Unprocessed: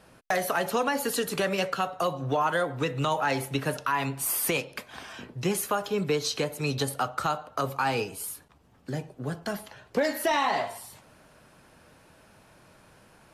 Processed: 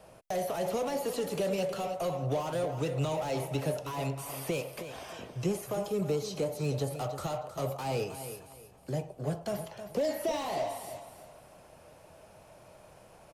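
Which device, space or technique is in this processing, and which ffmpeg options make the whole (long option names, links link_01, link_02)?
one-band saturation: -filter_complex "[0:a]acrossover=split=380|4000[link_01][link_02][link_03];[link_02]asoftclip=type=tanh:threshold=-38dB[link_04];[link_01][link_04][link_03]amix=inputs=3:normalize=0,equalizer=frequency=250:width_type=o:width=0.67:gain=-6,equalizer=frequency=630:width_type=o:width=0.67:gain=8,equalizer=frequency=1600:width_type=o:width=0.67:gain=-7,equalizer=frequency=4000:width_type=o:width=0.67:gain=-4,acrossover=split=4100[link_05][link_06];[link_06]acompressor=threshold=-44dB:ratio=4:attack=1:release=60[link_07];[link_05][link_07]amix=inputs=2:normalize=0,asettb=1/sr,asplit=3[link_08][link_09][link_10];[link_08]atrim=end=5.464[link_11];[link_09]atrim=start=5.46:end=6.91,asetpts=PTS-STARTPTS,afade=type=in:duration=0.004:curve=qsin,afade=type=out:start_time=1.446:duration=0.004:curve=qsin,equalizer=frequency=3100:width_type=o:width=1.5:gain=-4.5[link_12];[link_10]atrim=start=6.906[link_13];[link_11][link_12]acrossfade=duration=0.004:curve1=hsin:curve2=qsin[link_14];[link_14][link_13]acrossfade=duration=0.004:curve1=qsin:curve2=hsin,aecho=1:1:314|628|942:0.282|0.0789|0.0221"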